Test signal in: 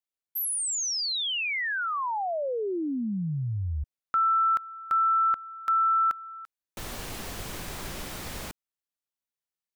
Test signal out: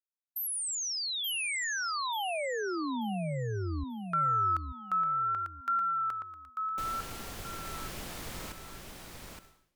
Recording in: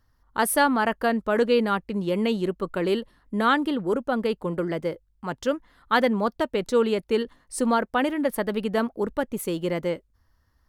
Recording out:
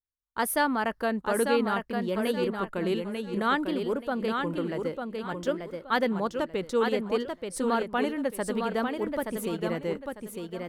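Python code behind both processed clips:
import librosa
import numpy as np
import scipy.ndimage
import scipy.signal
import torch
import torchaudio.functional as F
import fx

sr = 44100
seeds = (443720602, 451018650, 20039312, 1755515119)

y = fx.echo_feedback(x, sr, ms=886, feedback_pct=28, wet_db=-5.0)
y = fx.vibrato(y, sr, rate_hz=0.58, depth_cents=55.0)
y = fx.gate_hold(y, sr, open_db=-34.0, close_db=-41.0, hold_ms=50.0, range_db=-31, attack_ms=5.0, release_ms=365.0)
y = F.gain(torch.from_numpy(y), -5.0).numpy()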